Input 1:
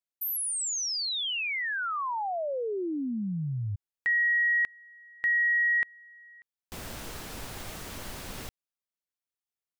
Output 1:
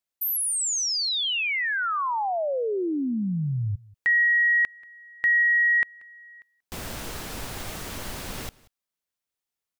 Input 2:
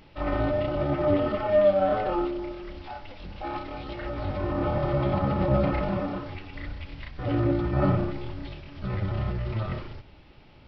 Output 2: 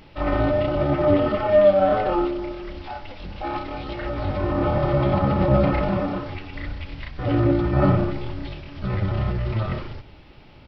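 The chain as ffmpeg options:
-af "aecho=1:1:184:0.0708,volume=5dB"

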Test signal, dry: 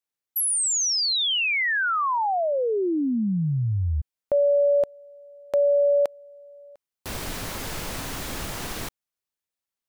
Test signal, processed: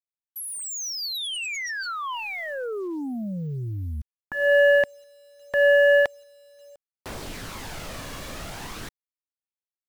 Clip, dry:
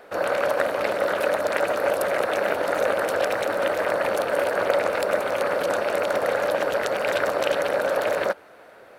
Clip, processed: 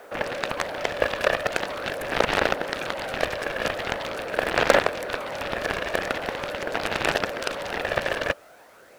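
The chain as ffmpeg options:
-filter_complex "[0:a]highshelf=f=11k:g=-9.5,acrossover=split=290|4200[a][b][c];[b]aphaser=in_gain=1:out_gain=1:delay=1.8:decay=0.43:speed=0.43:type=sinusoidal[d];[c]volume=29.5dB,asoftclip=hard,volume=-29.5dB[e];[a][d][e]amix=inputs=3:normalize=0,acrusher=bits=8:mix=0:aa=0.000001,aeval=exprs='0.596*(cos(1*acos(clip(val(0)/0.596,-1,1)))-cos(1*PI/2))+0.0106*(cos(2*acos(clip(val(0)/0.596,-1,1)))-cos(2*PI/2))+0.00473*(cos(5*acos(clip(val(0)/0.596,-1,1)))-cos(5*PI/2))+0.15*(cos(7*acos(clip(val(0)/0.596,-1,1)))-cos(7*PI/2))':c=same"

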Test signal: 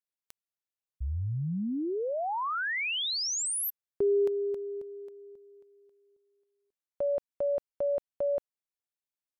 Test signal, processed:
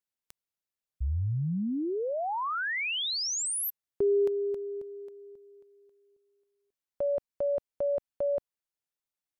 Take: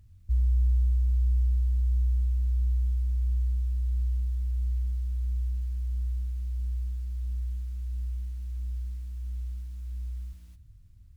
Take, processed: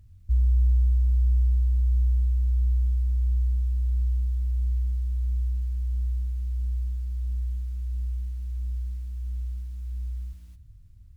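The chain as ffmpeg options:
-af "lowshelf=f=160:g=3.5"

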